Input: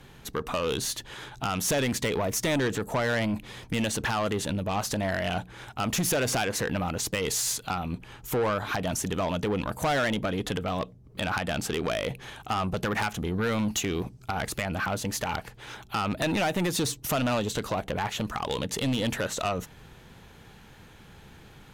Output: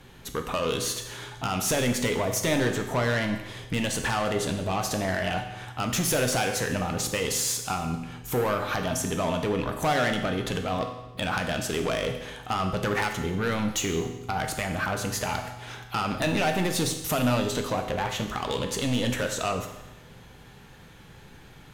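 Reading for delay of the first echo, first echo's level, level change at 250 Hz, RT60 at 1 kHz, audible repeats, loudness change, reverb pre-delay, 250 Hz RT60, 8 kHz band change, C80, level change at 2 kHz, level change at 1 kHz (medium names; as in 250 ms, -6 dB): no echo, no echo, +1.0 dB, 1.0 s, no echo, +1.5 dB, 8 ms, 1.0 s, +1.5 dB, 9.5 dB, +1.5 dB, +1.5 dB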